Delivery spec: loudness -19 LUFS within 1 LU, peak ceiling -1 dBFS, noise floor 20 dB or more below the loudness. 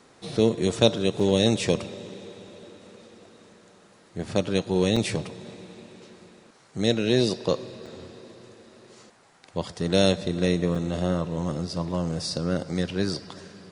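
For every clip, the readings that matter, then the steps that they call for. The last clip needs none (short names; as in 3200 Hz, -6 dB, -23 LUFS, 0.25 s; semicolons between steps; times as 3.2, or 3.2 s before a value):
dropouts 4; longest dropout 4.6 ms; loudness -25.5 LUFS; peak -3.0 dBFS; loudness target -19.0 LUFS
-> interpolate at 1.2/4.96/7.86/10.75, 4.6 ms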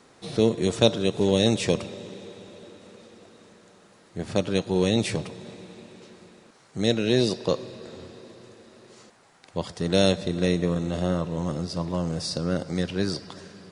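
dropouts 0; loudness -25.5 LUFS; peak -3.0 dBFS; loudness target -19.0 LUFS
-> gain +6.5 dB; limiter -1 dBFS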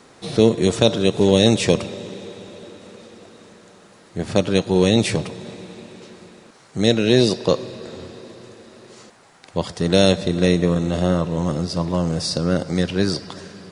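loudness -19.0 LUFS; peak -1.0 dBFS; noise floor -50 dBFS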